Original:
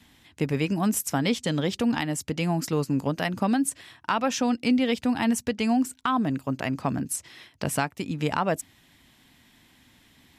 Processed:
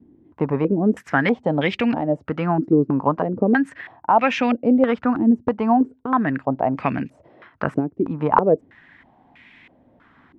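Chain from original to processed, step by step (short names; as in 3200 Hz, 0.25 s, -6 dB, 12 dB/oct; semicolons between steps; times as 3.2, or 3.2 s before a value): low shelf 110 Hz -8 dB; stepped low-pass 3.1 Hz 350–2300 Hz; gain +5 dB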